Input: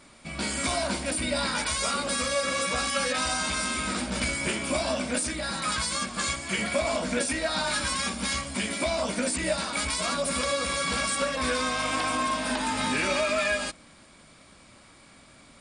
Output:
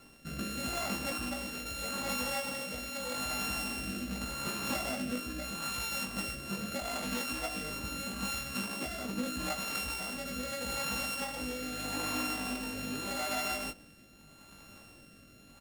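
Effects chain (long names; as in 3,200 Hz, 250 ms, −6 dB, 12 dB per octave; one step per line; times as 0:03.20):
samples sorted by size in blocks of 32 samples
downward compressor, threshold −31 dBFS, peak gain reduction 9 dB
rotating-speaker cabinet horn 0.8 Hz
double-tracking delay 20 ms −5.5 dB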